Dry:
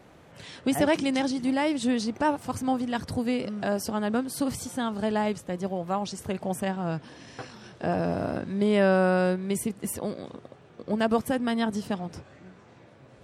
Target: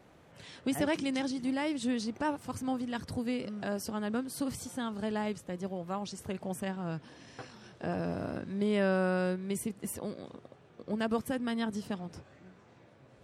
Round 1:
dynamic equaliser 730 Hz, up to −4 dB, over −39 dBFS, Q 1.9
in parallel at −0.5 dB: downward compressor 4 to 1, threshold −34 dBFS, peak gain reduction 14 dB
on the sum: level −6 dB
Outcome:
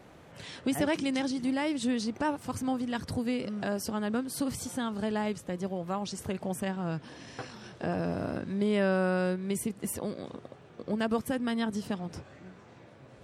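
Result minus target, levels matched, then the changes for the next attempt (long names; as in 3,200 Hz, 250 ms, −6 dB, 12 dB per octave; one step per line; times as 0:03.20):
downward compressor: peak gain reduction +14 dB
remove: downward compressor 4 to 1, threshold −34 dBFS, peak gain reduction 14 dB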